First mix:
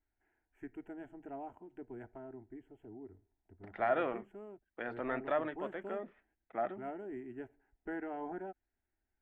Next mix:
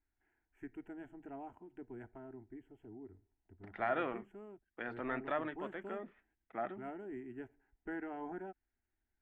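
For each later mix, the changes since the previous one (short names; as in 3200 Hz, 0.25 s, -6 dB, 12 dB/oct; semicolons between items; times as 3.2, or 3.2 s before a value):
master: add bell 580 Hz -5.5 dB 0.93 oct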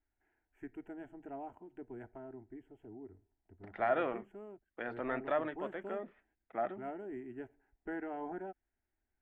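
master: add bell 580 Hz +5.5 dB 0.93 oct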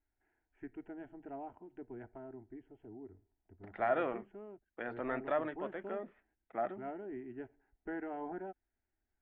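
master: add air absorption 130 m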